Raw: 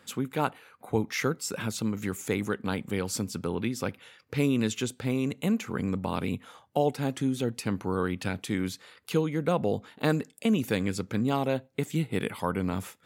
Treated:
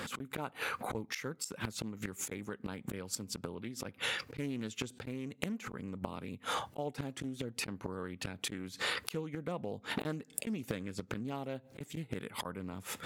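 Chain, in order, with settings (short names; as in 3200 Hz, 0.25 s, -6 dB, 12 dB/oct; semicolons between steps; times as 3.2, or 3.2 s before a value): flipped gate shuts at -22 dBFS, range -31 dB; negative-ratio compressor -51 dBFS, ratio -1; Doppler distortion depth 0.42 ms; gain +13 dB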